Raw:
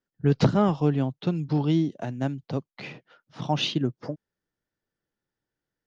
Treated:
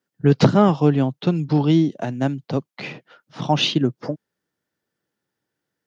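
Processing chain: high-pass 120 Hz; trim +7 dB

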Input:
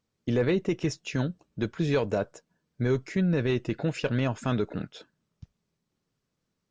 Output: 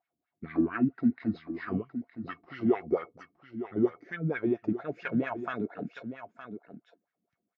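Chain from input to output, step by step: gliding tape speed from 63% -> 114%; on a send: delay 915 ms -11 dB; on the sum: wah-wah 4.4 Hz 220–1800 Hz, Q 3.7; small resonant body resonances 700/2200 Hz, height 15 dB, ringing for 100 ms; trim +5.5 dB

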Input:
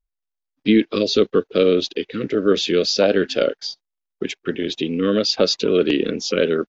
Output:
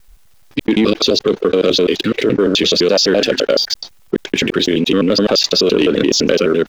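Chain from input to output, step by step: slices played last to first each 85 ms, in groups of 2; waveshaping leveller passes 1; level flattener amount 70%; trim -1.5 dB

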